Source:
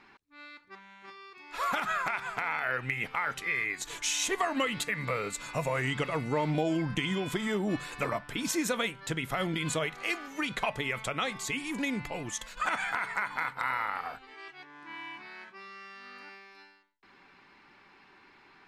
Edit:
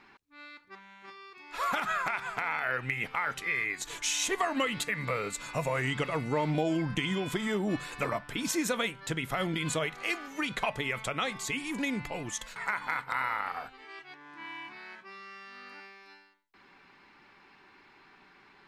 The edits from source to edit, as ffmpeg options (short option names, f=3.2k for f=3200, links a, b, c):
-filter_complex "[0:a]asplit=2[a][b];[a]atrim=end=12.562[c];[b]atrim=start=13.048[d];[c][d]acrossfade=d=0.004:c1=hsin:c2=hsin"